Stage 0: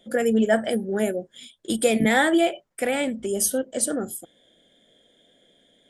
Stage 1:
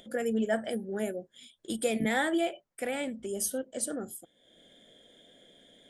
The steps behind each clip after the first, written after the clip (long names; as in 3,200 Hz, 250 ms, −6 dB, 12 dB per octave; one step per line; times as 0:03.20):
upward compression, threshold −38 dBFS
level −9 dB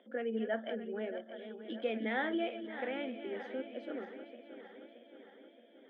feedback delay that plays each chunk backwards 312 ms, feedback 75%, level −10.5 dB
low-pass that shuts in the quiet parts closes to 2,000 Hz, open at −29 dBFS
Chebyshev band-pass filter 230–3,200 Hz, order 4
level −5.5 dB